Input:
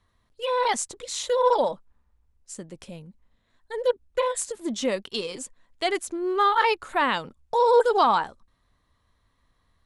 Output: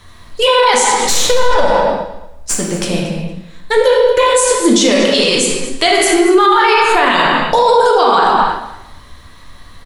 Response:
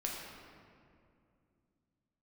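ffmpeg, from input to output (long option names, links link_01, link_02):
-filter_complex "[0:a]highshelf=frequency=2800:gain=10.5,asettb=1/sr,asplit=3[link_01][link_02][link_03];[link_01]atrim=end=0.954[link_04];[link_02]atrim=start=0.95:end=3.77,asetpts=PTS-STARTPTS,afade=type=in:duration=0.004:curve=qsin,afade=type=out:start_time=2.816:duration=0.004:curve=qsin,aeval=exprs='(tanh(8.91*val(0)+0.65)-tanh(0.65))/8.91':channel_layout=same[link_05];[link_03]atrim=start=3.766[link_06];[link_04][link_05]acrossfade=duration=0.004:curve1=hsin:curve2=qsin[link_07];[link_07][link_06]acrossfade=duration=0.004:curve1=qsin:curve2=hsin,acompressor=threshold=-37dB:ratio=2,highshelf=frequency=5600:gain=-5.5,aecho=1:1:230|460:0.141|0.0254[link_08];[1:a]atrim=start_sample=2205,afade=type=out:start_time=0.43:duration=0.01,atrim=end_sample=19404[link_09];[link_08][link_09]afir=irnorm=-1:irlink=0,alimiter=level_in=26.5dB:limit=-1dB:release=50:level=0:latency=1,volume=-1dB"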